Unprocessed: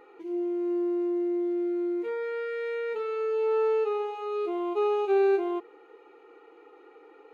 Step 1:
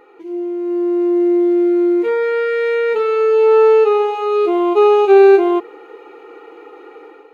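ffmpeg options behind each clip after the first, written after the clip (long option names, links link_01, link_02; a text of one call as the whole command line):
ffmpeg -i in.wav -af "dynaudnorm=framelen=640:gausssize=3:maxgain=9dB,volume=6dB" out.wav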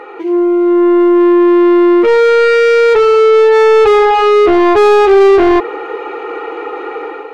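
ffmpeg -i in.wav -filter_complex "[0:a]asplit=2[link_01][link_02];[link_02]highpass=frequency=720:poles=1,volume=27dB,asoftclip=type=tanh:threshold=-1dB[link_03];[link_01][link_03]amix=inputs=2:normalize=0,lowpass=frequency=1900:poles=1,volume=-6dB" out.wav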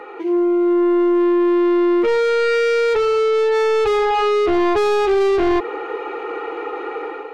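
ffmpeg -i in.wav -filter_complex "[0:a]acrossover=split=220|3000[link_01][link_02][link_03];[link_02]acompressor=threshold=-10dB:ratio=6[link_04];[link_01][link_04][link_03]amix=inputs=3:normalize=0,volume=-4.5dB" out.wav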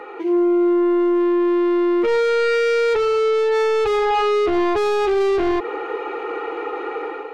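ffmpeg -i in.wav -af "alimiter=limit=-11.5dB:level=0:latency=1:release=110" out.wav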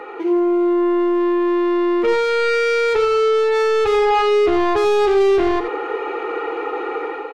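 ffmpeg -i in.wav -af "aecho=1:1:87:0.316,volume=2dB" out.wav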